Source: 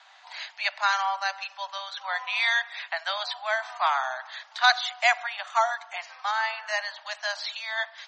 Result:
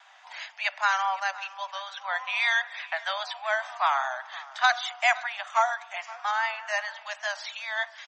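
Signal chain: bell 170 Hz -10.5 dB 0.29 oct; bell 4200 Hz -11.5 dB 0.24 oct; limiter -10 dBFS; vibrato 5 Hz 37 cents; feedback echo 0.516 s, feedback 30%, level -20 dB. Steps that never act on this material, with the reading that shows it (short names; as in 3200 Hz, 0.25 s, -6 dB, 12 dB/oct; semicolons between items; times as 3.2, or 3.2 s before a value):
bell 170 Hz: input band starts at 540 Hz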